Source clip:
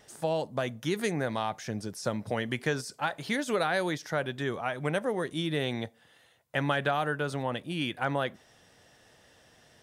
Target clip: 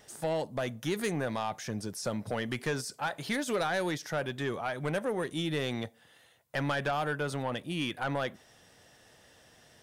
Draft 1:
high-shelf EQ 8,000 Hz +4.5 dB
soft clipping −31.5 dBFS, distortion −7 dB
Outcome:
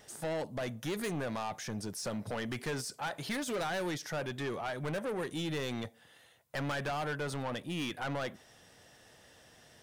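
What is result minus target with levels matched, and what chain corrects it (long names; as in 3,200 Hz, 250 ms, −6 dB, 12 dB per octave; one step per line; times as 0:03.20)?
soft clipping: distortion +7 dB
high-shelf EQ 8,000 Hz +4.5 dB
soft clipping −23.5 dBFS, distortion −14 dB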